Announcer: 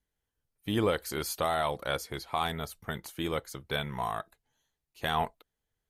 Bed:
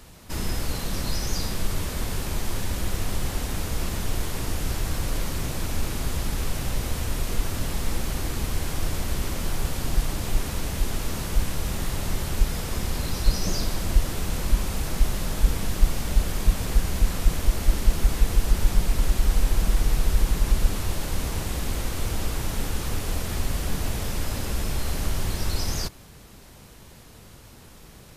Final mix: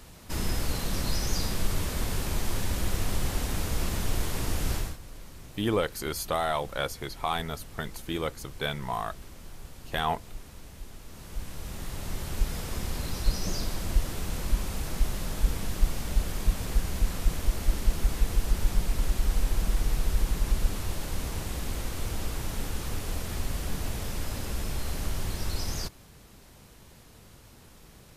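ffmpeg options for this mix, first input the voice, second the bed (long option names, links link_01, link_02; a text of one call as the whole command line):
ffmpeg -i stem1.wav -i stem2.wav -filter_complex "[0:a]adelay=4900,volume=1dB[link_01];[1:a]volume=11.5dB,afade=type=out:start_time=4.75:duration=0.22:silence=0.149624,afade=type=in:start_time=11.06:duration=1.5:silence=0.223872[link_02];[link_01][link_02]amix=inputs=2:normalize=0" out.wav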